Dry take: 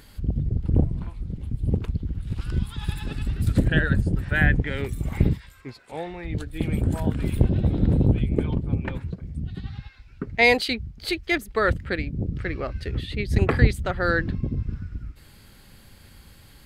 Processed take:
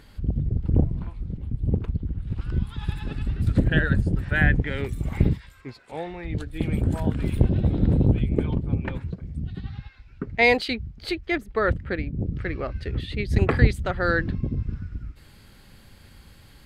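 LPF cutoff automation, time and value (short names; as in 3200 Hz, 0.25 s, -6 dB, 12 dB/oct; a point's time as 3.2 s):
LPF 6 dB/oct
3500 Hz
from 1.37 s 1700 Hz
from 2.67 s 2700 Hz
from 3.72 s 6400 Hz
from 9.53 s 3700 Hz
from 11.12 s 1800 Hz
from 12.19 s 3700 Hz
from 13 s 6900 Hz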